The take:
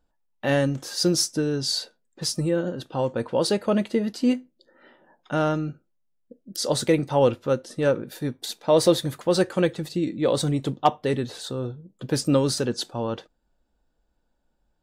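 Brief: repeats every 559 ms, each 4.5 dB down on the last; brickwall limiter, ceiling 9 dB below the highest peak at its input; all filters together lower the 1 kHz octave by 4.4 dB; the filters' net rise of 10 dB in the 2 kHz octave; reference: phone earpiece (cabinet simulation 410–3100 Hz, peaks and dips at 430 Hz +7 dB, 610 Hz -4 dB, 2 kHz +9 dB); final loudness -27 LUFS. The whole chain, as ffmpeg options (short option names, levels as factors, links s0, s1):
-af "equalizer=f=1000:t=o:g=-8,equalizer=f=2000:t=o:g=9,alimiter=limit=0.158:level=0:latency=1,highpass=410,equalizer=f=430:t=q:w=4:g=7,equalizer=f=610:t=q:w=4:g=-4,equalizer=f=2000:t=q:w=4:g=9,lowpass=f=3100:w=0.5412,lowpass=f=3100:w=1.3066,aecho=1:1:559|1118|1677|2236|2795|3354|3913|4472|5031:0.596|0.357|0.214|0.129|0.0772|0.0463|0.0278|0.0167|0.01,volume=1.19"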